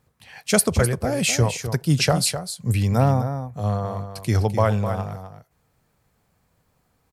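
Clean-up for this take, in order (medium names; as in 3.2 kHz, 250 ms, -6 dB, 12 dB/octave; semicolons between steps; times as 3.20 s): inverse comb 255 ms -9.5 dB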